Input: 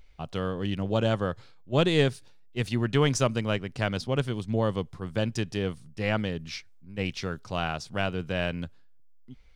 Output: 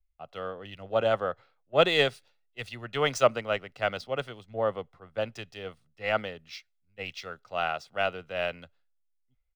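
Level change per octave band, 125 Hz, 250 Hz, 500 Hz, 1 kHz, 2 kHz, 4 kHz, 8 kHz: −13.0, −11.5, +1.0, +2.5, +1.0, +0.5, −5.5 decibels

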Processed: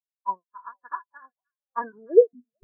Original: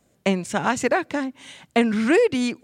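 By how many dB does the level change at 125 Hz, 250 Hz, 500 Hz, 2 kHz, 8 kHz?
below −30 dB, −19.5 dB, −0.5 dB, −19.0 dB, below −40 dB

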